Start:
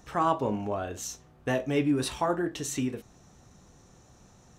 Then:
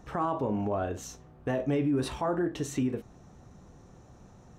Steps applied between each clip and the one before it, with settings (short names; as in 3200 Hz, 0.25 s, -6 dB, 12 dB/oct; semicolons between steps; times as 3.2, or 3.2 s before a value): high shelf 2100 Hz -12 dB; limiter -25 dBFS, peak gain reduction 9 dB; gain +4 dB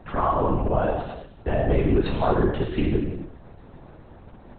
non-linear reverb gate 0.4 s falling, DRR 0.5 dB; LPC vocoder at 8 kHz whisper; gain +5.5 dB